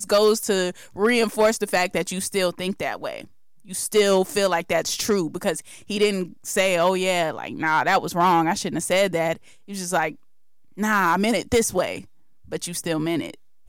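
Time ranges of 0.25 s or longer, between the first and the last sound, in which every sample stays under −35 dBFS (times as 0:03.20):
0:03.24–0:03.70
0:09.37–0:09.69
0:10.13–0:10.78
0:12.04–0:12.52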